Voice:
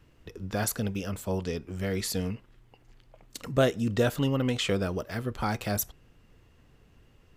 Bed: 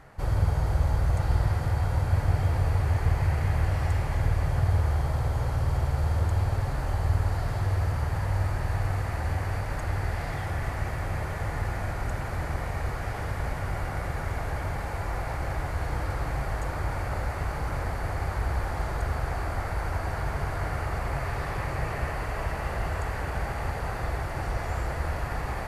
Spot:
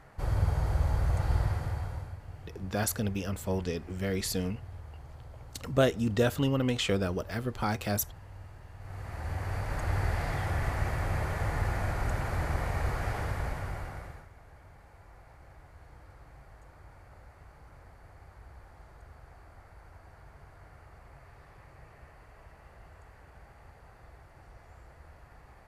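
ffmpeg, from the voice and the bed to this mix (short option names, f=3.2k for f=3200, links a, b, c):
-filter_complex "[0:a]adelay=2200,volume=-1dB[a];[1:a]volume=17dB,afade=t=out:st=1.38:d=0.8:silence=0.133352,afade=t=in:st=8.78:d=1.22:silence=0.0944061,afade=t=out:st=13.1:d=1.18:silence=0.0749894[b];[a][b]amix=inputs=2:normalize=0"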